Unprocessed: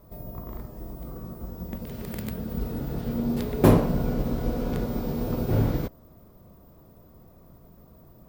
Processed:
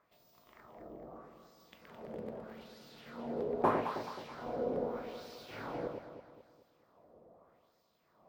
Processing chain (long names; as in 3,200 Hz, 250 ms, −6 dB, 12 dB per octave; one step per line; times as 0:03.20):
auto-filter band-pass sine 0.8 Hz 500–4,700 Hz
delay that swaps between a low-pass and a high-pass 107 ms, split 810 Hz, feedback 67%, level −3.5 dB